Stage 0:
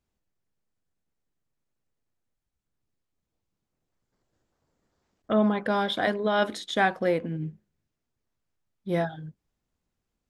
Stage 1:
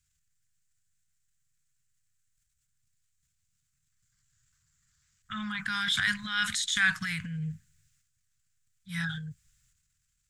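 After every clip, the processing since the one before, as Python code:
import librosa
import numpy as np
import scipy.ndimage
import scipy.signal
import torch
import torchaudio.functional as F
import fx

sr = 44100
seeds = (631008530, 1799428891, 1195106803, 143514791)

y = scipy.signal.sosfilt(scipy.signal.ellip(3, 1.0, 80, [140.0, 1500.0], 'bandstop', fs=sr, output='sos'), x)
y = fx.peak_eq(y, sr, hz=7500.0, db=12.5, octaves=0.7)
y = fx.transient(y, sr, attack_db=-5, sustain_db=8)
y = F.gain(torch.from_numpy(y), 4.5).numpy()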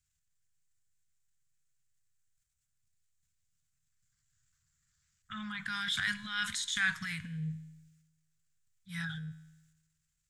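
y = fx.comb_fb(x, sr, f0_hz=79.0, decay_s=1.1, harmonics='all', damping=0.0, mix_pct=50)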